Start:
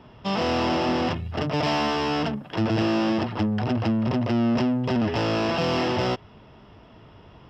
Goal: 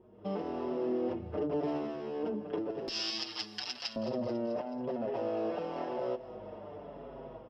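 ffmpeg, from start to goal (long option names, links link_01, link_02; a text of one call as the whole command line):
ffmpeg -i in.wav -filter_complex "[0:a]aeval=exprs='val(0)+0.00708*(sin(2*PI*50*n/s)+sin(2*PI*2*50*n/s)/2+sin(2*PI*3*50*n/s)/3+sin(2*PI*4*50*n/s)/4+sin(2*PI*5*50*n/s)/5)':channel_layout=same,asetnsamples=nb_out_samples=441:pad=0,asendcmd='2.88 bandpass f 4800;3.96 bandpass f 540',bandpass=frequency=400:width_type=q:width=2.8:csg=0,alimiter=level_in=6dB:limit=-24dB:level=0:latency=1:release=99,volume=-6dB,dynaudnorm=framelen=110:gausssize=5:maxgain=16dB,aemphasis=mode=production:type=cd,acompressor=threshold=-37dB:ratio=2,aecho=1:1:217|434|651|868|1085:0.178|0.096|0.0519|0.028|0.0151,asplit=2[link_01][link_02];[link_02]adelay=5.9,afreqshift=-0.94[link_03];[link_01][link_03]amix=inputs=2:normalize=1" out.wav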